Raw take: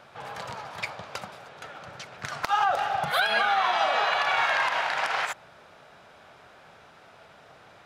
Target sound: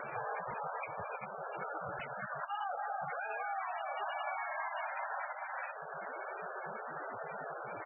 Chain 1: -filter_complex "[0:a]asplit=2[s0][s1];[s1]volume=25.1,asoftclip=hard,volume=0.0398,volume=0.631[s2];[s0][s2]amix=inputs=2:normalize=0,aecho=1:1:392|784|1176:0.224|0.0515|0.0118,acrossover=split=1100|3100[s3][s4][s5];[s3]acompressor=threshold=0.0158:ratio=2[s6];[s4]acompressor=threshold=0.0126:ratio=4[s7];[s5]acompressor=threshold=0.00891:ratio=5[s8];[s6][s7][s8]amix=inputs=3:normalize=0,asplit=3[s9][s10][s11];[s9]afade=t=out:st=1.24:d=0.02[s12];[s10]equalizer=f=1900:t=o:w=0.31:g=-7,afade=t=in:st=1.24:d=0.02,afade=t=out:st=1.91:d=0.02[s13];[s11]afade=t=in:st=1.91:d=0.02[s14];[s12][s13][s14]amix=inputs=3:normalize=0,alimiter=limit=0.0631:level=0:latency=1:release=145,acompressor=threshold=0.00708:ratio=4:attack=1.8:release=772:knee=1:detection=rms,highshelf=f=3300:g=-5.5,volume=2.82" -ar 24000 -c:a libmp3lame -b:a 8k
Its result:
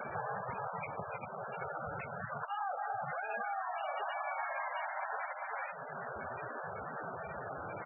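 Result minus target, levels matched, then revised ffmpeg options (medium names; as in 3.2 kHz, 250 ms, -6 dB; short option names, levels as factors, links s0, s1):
250 Hz band +4.0 dB; overload inside the chain: distortion -4 dB
-filter_complex "[0:a]asplit=2[s0][s1];[s1]volume=70.8,asoftclip=hard,volume=0.0141,volume=0.631[s2];[s0][s2]amix=inputs=2:normalize=0,aecho=1:1:392|784|1176:0.224|0.0515|0.0118,acrossover=split=1100|3100[s3][s4][s5];[s3]acompressor=threshold=0.0158:ratio=2[s6];[s4]acompressor=threshold=0.0126:ratio=4[s7];[s5]acompressor=threshold=0.00891:ratio=5[s8];[s6][s7][s8]amix=inputs=3:normalize=0,asplit=3[s9][s10][s11];[s9]afade=t=out:st=1.24:d=0.02[s12];[s10]equalizer=f=1900:t=o:w=0.31:g=-7,afade=t=in:st=1.24:d=0.02,afade=t=out:st=1.91:d=0.02[s13];[s11]afade=t=in:st=1.91:d=0.02[s14];[s12][s13][s14]amix=inputs=3:normalize=0,alimiter=limit=0.0631:level=0:latency=1:release=145,acompressor=threshold=0.00708:ratio=4:attack=1.8:release=772:knee=1:detection=rms,highpass=f=240:p=1,highshelf=f=3300:g=-5.5,volume=2.82" -ar 24000 -c:a libmp3lame -b:a 8k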